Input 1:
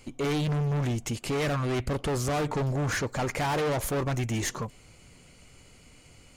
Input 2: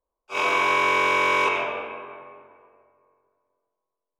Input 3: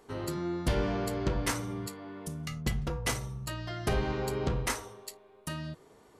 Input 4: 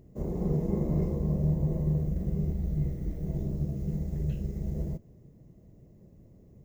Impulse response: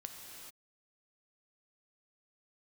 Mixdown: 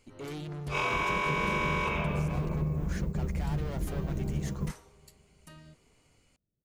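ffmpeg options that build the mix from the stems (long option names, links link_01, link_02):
-filter_complex "[0:a]volume=-12.5dB,asplit=2[link_01][link_02];[1:a]adelay=400,volume=-3dB[link_03];[2:a]dynaudnorm=framelen=100:gausssize=3:maxgain=5.5dB,volume=-19.5dB,asplit=3[link_04][link_05][link_06];[link_04]atrim=end=2.49,asetpts=PTS-STARTPTS,afade=type=out:start_time=2.486:duration=0.004:curve=hsin[link_07];[link_05]atrim=start=2.49:end=3.28,asetpts=PTS-STARTPTS,volume=0[link_08];[link_06]atrim=start=3.28,asetpts=PTS-STARTPTS,afade=type=in:duration=0.004:curve=hsin[link_09];[link_07][link_08][link_09]concat=n=3:v=0:a=1[link_10];[3:a]adelay=750,volume=1dB[link_11];[link_02]apad=whole_len=326059[link_12];[link_11][link_12]sidechaingate=range=-33dB:threshold=-47dB:ratio=16:detection=peak[link_13];[link_01][link_03][link_10][link_13]amix=inputs=4:normalize=0,acompressor=threshold=-27dB:ratio=4"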